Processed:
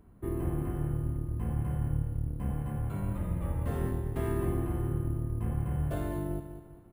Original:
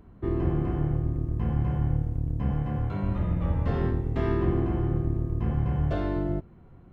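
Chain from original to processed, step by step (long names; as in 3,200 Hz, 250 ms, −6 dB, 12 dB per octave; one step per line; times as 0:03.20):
on a send: repeating echo 198 ms, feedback 42%, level −10.5 dB
on the sum: bad sample-rate conversion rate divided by 4×, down none, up hold
level −6 dB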